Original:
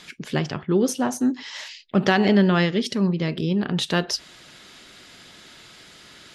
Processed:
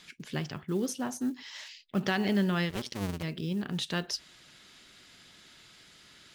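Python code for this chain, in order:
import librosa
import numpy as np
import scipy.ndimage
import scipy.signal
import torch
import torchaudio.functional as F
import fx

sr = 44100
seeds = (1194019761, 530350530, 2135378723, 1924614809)

y = fx.cycle_switch(x, sr, every=2, mode='muted', at=(2.69, 3.22), fade=0.02)
y = fx.quant_float(y, sr, bits=4)
y = fx.peak_eq(y, sr, hz=550.0, db=-4.5, octaves=2.3)
y = y * 10.0 ** (-8.0 / 20.0)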